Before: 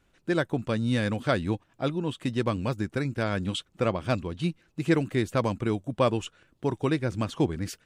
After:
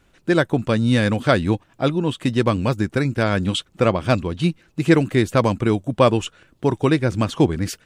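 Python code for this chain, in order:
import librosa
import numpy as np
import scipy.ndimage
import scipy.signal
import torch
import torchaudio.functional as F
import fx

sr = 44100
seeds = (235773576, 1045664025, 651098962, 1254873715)

y = F.gain(torch.from_numpy(x), 8.5).numpy()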